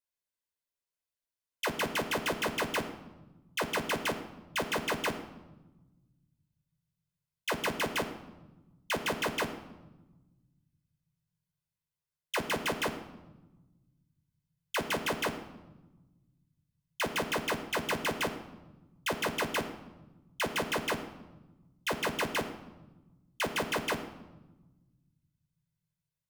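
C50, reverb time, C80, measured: 11.5 dB, 1.1 s, 13.0 dB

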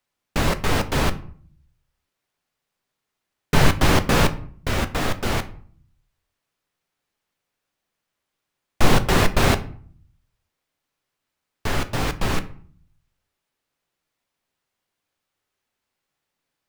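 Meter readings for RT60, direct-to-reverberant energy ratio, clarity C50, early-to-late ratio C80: 0.50 s, 9.5 dB, 16.0 dB, 20.0 dB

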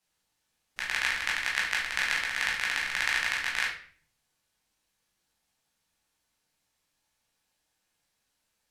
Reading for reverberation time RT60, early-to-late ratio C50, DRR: 0.50 s, 5.5 dB, −4.5 dB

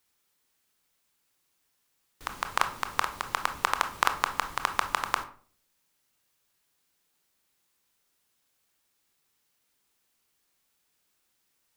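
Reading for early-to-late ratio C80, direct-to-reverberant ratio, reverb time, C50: 17.0 dB, 7.5 dB, 0.45 s, 12.0 dB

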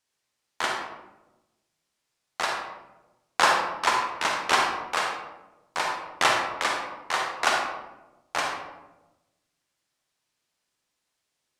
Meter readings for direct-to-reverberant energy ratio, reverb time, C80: 0.5 dB, 1.0 s, 5.5 dB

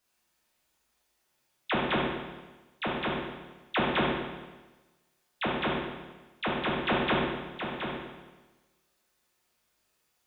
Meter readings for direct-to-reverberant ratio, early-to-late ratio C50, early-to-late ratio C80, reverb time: −6.0 dB, 0.0 dB, 2.5 dB, 1.2 s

